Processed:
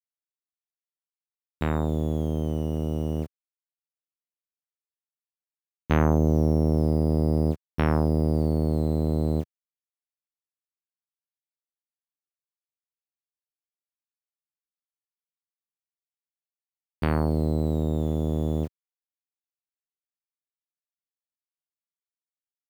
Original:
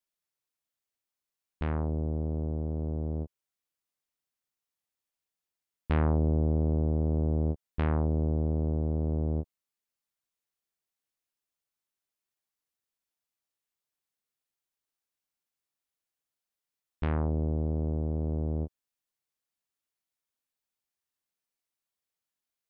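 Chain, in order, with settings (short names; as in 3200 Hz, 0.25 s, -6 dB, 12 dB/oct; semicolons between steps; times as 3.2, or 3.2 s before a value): level-crossing sampler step -52.5 dBFS; HPF 99 Hz 12 dB/oct; gain +7.5 dB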